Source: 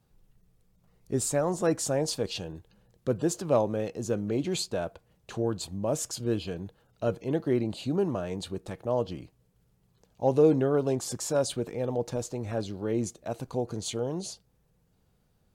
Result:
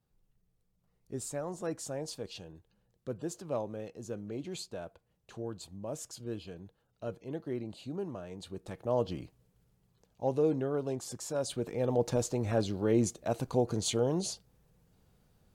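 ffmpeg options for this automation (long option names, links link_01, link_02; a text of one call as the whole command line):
ffmpeg -i in.wav -af "volume=9.5dB,afade=type=in:start_time=8.37:duration=0.84:silence=0.298538,afade=type=out:start_time=9.21:duration=1.19:silence=0.421697,afade=type=in:start_time=11.38:duration=0.7:silence=0.334965" out.wav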